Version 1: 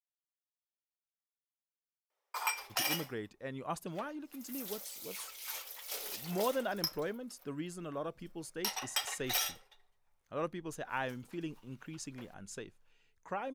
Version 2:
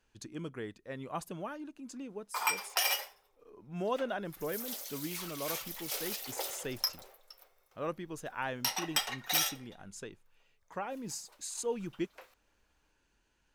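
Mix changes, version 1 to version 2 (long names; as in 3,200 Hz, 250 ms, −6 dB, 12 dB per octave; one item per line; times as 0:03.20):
speech: entry −2.55 s
background +3.5 dB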